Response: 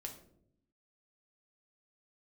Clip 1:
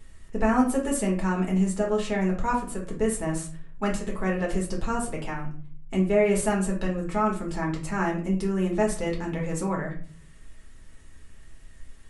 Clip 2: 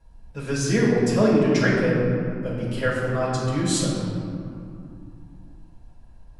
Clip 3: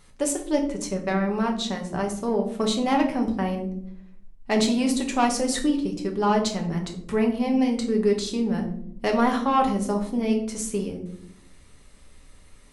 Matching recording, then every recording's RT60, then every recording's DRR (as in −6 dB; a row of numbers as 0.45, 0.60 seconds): 3; 0.45, 2.6, 0.70 seconds; −1.5, −8.5, 1.5 decibels